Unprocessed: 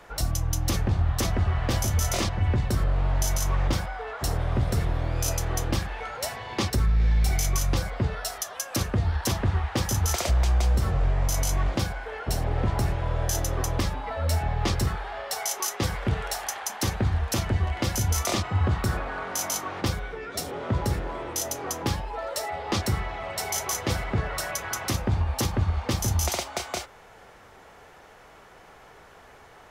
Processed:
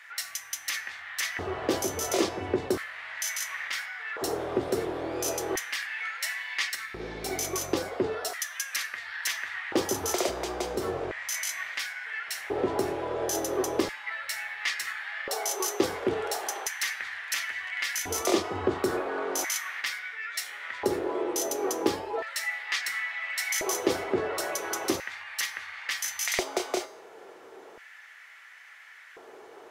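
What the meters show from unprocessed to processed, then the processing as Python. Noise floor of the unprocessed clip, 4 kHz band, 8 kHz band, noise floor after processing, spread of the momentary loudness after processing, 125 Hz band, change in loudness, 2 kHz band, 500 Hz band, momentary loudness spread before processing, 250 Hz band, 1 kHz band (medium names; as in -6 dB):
-51 dBFS, -0.5 dB, -1.5 dB, -50 dBFS, 8 LU, -21.0 dB, -3.0 dB, +4.0 dB, +3.0 dB, 7 LU, -1.5 dB, -2.5 dB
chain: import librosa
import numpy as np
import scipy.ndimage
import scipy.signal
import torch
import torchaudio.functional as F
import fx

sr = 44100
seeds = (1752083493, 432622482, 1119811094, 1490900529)

y = fx.comb_fb(x, sr, f0_hz=91.0, decay_s=0.6, harmonics='odd', damping=0.0, mix_pct=60)
y = fx.filter_lfo_highpass(y, sr, shape='square', hz=0.36, low_hz=370.0, high_hz=1900.0, q=4.1)
y = fx.low_shelf(y, sr, hz=97.0, db=9.5)
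y = y * librosa.db_to_amplitude(5.0)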